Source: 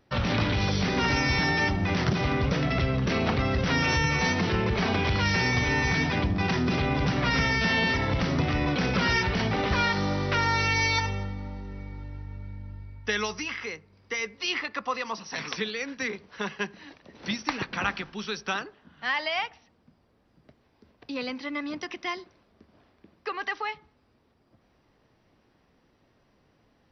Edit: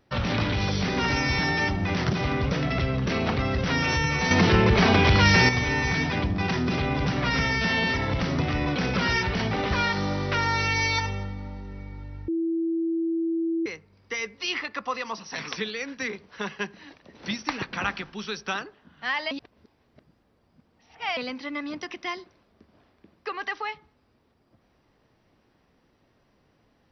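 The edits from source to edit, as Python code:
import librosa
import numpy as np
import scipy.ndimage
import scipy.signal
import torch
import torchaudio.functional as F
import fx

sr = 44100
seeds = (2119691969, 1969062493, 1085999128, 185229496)

y = fx.edit(x, sr, fx.clip_gain(start_s=4.31, length_s=1.18, db=7.0),
    fx.bleep(start_s=12.28, length_s=1.38, hz=330.0, db=-23.0),
    fx.reverse_span(start_s=19.31, length_s=1.86), tone=tone)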